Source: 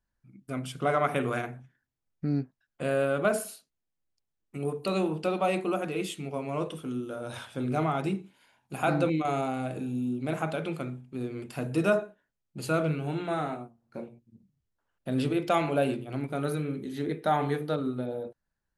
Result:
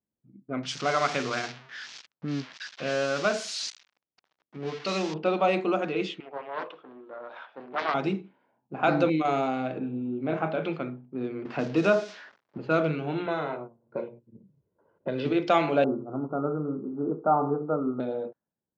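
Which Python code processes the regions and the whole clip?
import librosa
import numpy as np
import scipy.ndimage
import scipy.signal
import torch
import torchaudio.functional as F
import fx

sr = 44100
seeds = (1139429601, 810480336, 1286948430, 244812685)

y = fx.chain(x, sr, fx.crossing_spikes(level_db=-22.0),
    fx.peak_eq(hz=380.0, db=-5.5, octaves=2.4), at=(0.63, 5.14))
y = fx.chain(y, sr, fx.bandpass_edges(low_hz=760.0, high_hz=4200.0),
    fx.high_shelf(hz=2700.0, db=10.0),
    fx.doppler_dist(depth_ms=0.48), at=(6.2, 7.94))
y = fx.chain(y, sr, fx.lowpass(hz=4800.0, slope=12),
    fx.high_shelf(hz=2600.0, db=-10.0),
    fx.doubler(ms=30.0, db=-8.5), at=(9.79, 10.63))
y = fx.chain(y, sr, fx.crossing_spikes(level_db=-30.0),
    fx.band_squash(depth_pct=40), at=(11.45, 12.58))
y = fx.chain(y, sr, fx.high_shelf(hz=8400.0, db=-4.5),
    fx.comb(ms=2.0, depth=0.57),
    fx.band_squash(depth_pct=70), at=(13.26, 15.25))
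y = fx.chain(y, sr, fx.block_float(bits=5),
    fx.cheby1_lowpass(hz=1400.0, order=8), at=(15.84, 18.0))
y = scipy.signal.sosfilt(scipy.signal.butter(2, 190.0, 'highpass', fs=sr, output='sos'), y)
y = fx.env_lowpass(y, sr, base_hz=450.0, full_db=-25.5)
y = scipy.signal.sosfilt(scipy.signal.butter(6, 6100.0, 'lowpass', fs=sr, output='sos'), y)
y = F.gain(torch.from_numpy(y), 3.5).numpy()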